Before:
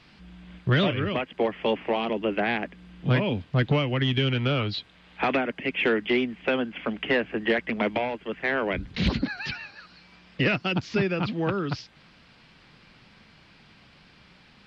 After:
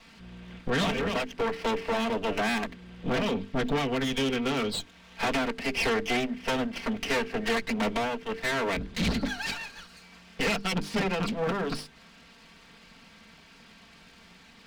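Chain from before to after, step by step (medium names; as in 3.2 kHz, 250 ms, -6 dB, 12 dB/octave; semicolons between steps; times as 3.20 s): comb filter that takes the minimum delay 4.4 ms; hum notches 50/100/150/200/250/300/350/400/450 Hz; saturation -25 dBFS, distortion -12 dB; trim +3 dB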